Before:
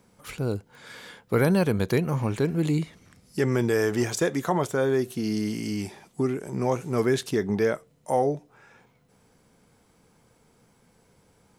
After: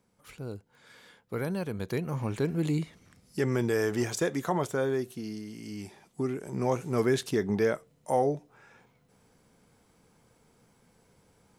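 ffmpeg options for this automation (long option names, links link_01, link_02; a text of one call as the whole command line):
ffmpeg -i in.wav -af "volume=7.5dB,afade=type=in:start_time=1.7:duration=0.76:silence=0.446684,afade=type=out:start_time=4.76:duration=0.7:silence=0.316228,afade=type=in:start_time=5.46:duration=1.27:silence=0.266073" out.wav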